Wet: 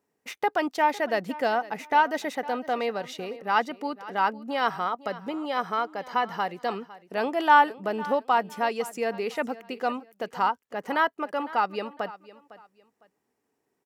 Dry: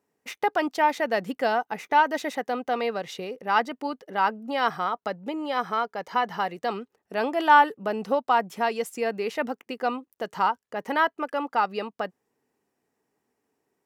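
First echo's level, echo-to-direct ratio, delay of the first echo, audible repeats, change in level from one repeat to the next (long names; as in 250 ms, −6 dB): −18.0 dB, −17.5 dB, 506 ms, 2, −11.5 dB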